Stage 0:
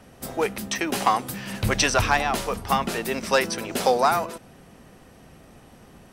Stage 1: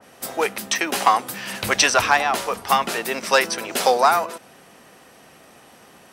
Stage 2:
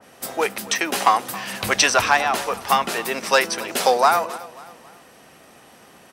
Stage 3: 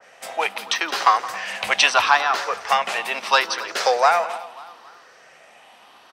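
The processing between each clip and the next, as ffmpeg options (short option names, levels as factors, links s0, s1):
-af "highpass=f=700:p=1,adynamicequalizer=threshold=0.0158:dfrequency=1900:dqfactor=0.7:tfrequency=1900:tqfactor=0.7:attack=5:release=100:ratio=0.375:range=2.5:mode=cutabove:tftype=highshelf,volume=2.11"
-af "aecho=1:1:270|540|810:0.112|0.0494|0.0217"
-filter_complex "[0:a]afftfilt=real='re*pow(10,6/40*sin(2*PI*(0.54*log(max(b,1)*sr/1024/100)/log(2)-(0.76)*(pts-256)/sr)))':imag='im*pow(10,6/40*sin(2*PI*(0.54*log(max(b,1)*sr/1024/100)/log(2)-(0.76)*(pts-256)/sr)))':win_size=1024:overlap=0.75,acrossover=split=540 6000:gain=0.141 1 0.158[s0][s1][s2];[s0][s1][s2]amix=inputs=3:normalize=0,asplit=2[s3][s4];[s4]adelay=169.1,volume=0.158,highshelf=f=4000:g=-3.8[s5];[s3][s5]amix=inputs=2:normalize=0,volume=1.19"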